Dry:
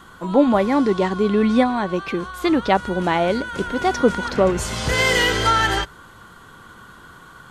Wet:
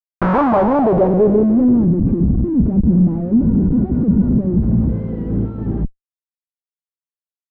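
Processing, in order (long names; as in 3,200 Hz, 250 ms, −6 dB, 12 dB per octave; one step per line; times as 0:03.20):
comparator with hysteresis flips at −27.5 dBFS
low-pass filter sweep 1,600 Hz → 220 Hz, 0:00.05–0:02.01
level +5 dB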